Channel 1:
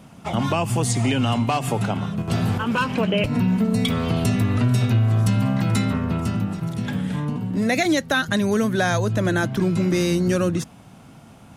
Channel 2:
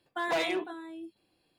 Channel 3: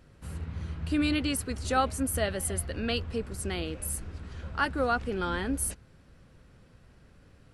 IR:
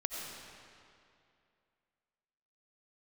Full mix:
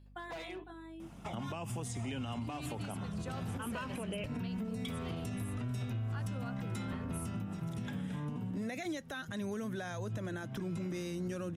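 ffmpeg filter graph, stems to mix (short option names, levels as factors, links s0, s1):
-filter_complex "[0:a]bandreject=f=4400:w=7.1,adelay=1000,volume=0.398[s0];[1:a]acrossover=split=150[s1][s2];[s2]acompressor=threshold=0.01:ratio=3[s3];[s1][s3]amix=inputs=2:normalize=0,aeval=exprs='val(0)+0.00282*(sin(2*PI*50*n/s)+sin(2*PI*2*50*n/s)/2+sin(2*PI*3*50*n/s)/3+sin(2*PI*4*50*n/s)/4+sin(2*PI*5*50*n/s)/5)':c=same,volume=0.562[s4];[2:a]adelay=1550,volume=0.335[s5];[s0][s4][s5]amix=inputs=3:normalize=0,alimiter=level_in=2.24:limit=0.0631:level=0:latency=1:release=242,volume=0.447"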